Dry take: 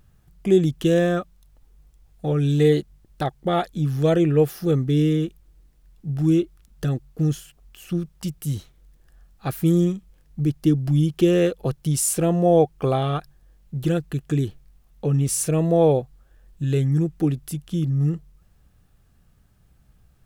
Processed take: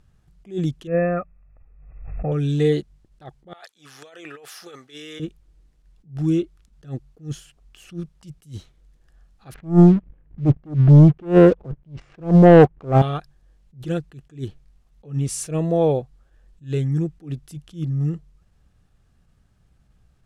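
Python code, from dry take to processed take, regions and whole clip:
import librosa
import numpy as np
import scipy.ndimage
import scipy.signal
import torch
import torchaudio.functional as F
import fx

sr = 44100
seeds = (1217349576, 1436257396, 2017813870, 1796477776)

y = fx.chain(x, sr, fx.brickwall_lowpass(high_hz=2700.0),
    fx.comb(ms=1.6, depth=0.47),
    fx.pre_swell(db_per_s=51.0), at=(0.87, 2.32))
y = fx.chain(y, sr, fx.highpass(hz=1000.0, slope=12),
    fx.over_compress(threshold_db=-39.0, ratio=-1.0), at=(3.53, 5.2))
y = fx.chain(y, sr, fx.lowpass(hz=2300.0, slope=24),
    fx.low_shelf(hz=500.0, db=8.0),
    fx.leveller(passes=2), at=(9.54, 13.02))
y = scipy.signal.sosfilt(scipy.signal.butter(2, 8400.0, 'lowpass', fs=sr, output='sos'), y)
y = fx.attack_slew(y, sr, db_per_s=210.0)
y = F.gain(torch.from_numpy(y), -1.5).numpy()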